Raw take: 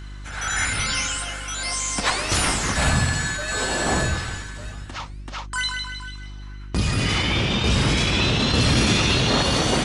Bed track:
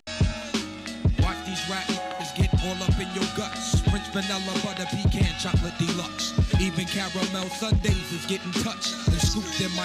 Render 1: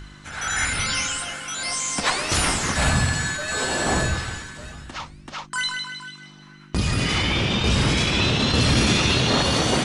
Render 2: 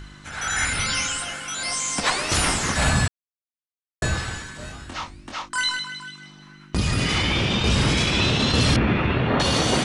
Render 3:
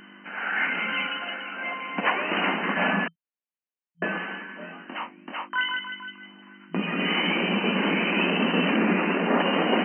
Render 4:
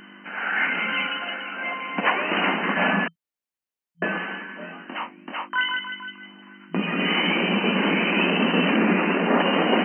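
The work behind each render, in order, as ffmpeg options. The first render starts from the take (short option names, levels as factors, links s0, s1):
-af "bandreject=f=50:t=h:w=4,bandreject=f=100:t=h:w=4"
-filter_complex "[0:a]asettb=1/sr,asplit=3[s0][s1][s2];[s0]atrim=end=4.574[s3];[s1]atrim=start=4.57:end=5.79,asetpts=PTS-STARTPTS,afade=t=in:d=0.004:c=qsin,afade=t=out:st=1.216:d=0.004:c=qsin,asplit=2[s4][s5];[s5]adelay=23,volume=0.668[s6];[s4][s6]amix=inputs=2:normalize=0,atrim=end_sample=53802[s7];[s2]atrim=start=5.786[s8];[s3][s7]acrossfade=d=0.004:c1=hsin:c2=qsin[s9];[s9][s8]acrossfade=d=0.004:c1=qsin:c2=hsin,asettb=1/sr,asplit=3[s10][s11][s12];[s10]atrim=end=8.764[s13];[s11]atrim=start=8.76:end=9.4,asetpts=PTS-STARTPTS,afade=t=in:d=0.004:c=qsin,afade=t=out:st=0.636:d=0.004:c=qsin,lowpass=f=2300:w=0.5412,lowpass=f=2300:w=1.3066[s14];[s12]atrim=start=9.396[s15];[s13][s14]acrossfade=d=0.004:c1=hsin:c2=qsin[s16];[s16][s15]acrossfade=d=0.004:c1=qsin:c2=hsin,asplit=3[s17][s18][s19];[s17]atrim=end=3.08,asetpts=PTS-STARTPTS,afade=t=out:st=3.076:d=0.004:c=hsin[s20];[s18]atrim=start=3.08:end=4.02,asetpts=PTS-STARTPTS,volume=0[s21];[s19]atrim=start=4.02,asetpts=PTS-STARTPTS,afade=t=in:d=0.004:c=hsin[s22];[s20][s21][s22]concat=n=3:v=0:a=1"
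-af "bandreject=f=1300:w=19,afftfilt=real='re*between(b*sr/4096,170,3100)':imag='im*between(b*sr/4096,170,3100)':win_size=4096:overlap=0.75"
-af "volume=1.33"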